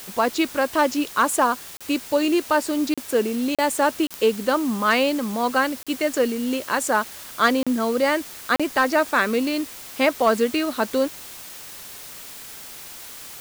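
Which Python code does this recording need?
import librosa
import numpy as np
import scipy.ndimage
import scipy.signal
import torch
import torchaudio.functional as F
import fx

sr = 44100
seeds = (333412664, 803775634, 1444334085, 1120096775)

y = fx.fix_declip(x, sr, threshold_db=-9.0)
y = fx.fix_declick_ar(y, sr, threshold=10.0)
y = fx.fix_interpolate(y, sr, at_s=(1.77, 2.94, 3.55, 4.07, 5.83, 7.63, 8.56), length_ms=36.0)
y = fx.noise_reduce(y, sr, print_start_s=12.52, print_end_s=13.02, reduce_db=28.0)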